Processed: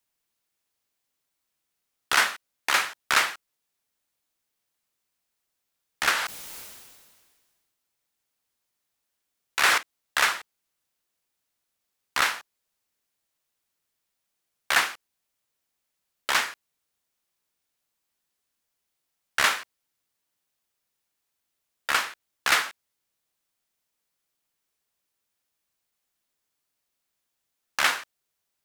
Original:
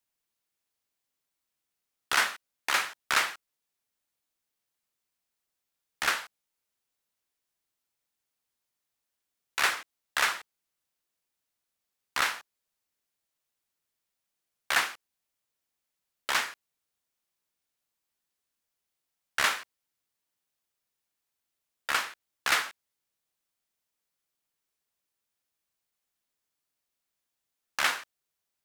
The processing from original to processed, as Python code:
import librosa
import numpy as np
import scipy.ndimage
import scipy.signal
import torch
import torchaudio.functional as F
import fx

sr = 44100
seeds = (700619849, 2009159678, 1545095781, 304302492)

y = fx.sustainer(x, sr, db_per_s=34.0, at=(6.12, 9.78))
y = y * 10.0 ** (4.0 / 20.0)